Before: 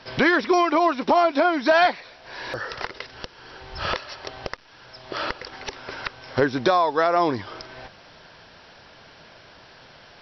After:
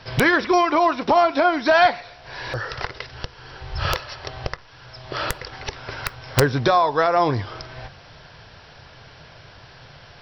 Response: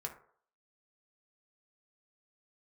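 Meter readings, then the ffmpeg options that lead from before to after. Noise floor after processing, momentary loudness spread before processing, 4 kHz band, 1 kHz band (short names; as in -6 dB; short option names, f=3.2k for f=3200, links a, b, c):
-46 dBFS, 20 LU, +2.0 dB, +2.5 dB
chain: -filter_complex "[0:a]lowshelf=f=160:t=q:w=1.5:g=8,aeval=exprs='(mod(2.82*val(0)+1,2)-1)/2.82':c=same,asplit=2[a][b];[1:a]atrim=start_sample=2205[c];[b][c]afir=irnorm=-1:irlink=0,volume=-9dB[d];[a][d]amix=inputs=2:normalize=0"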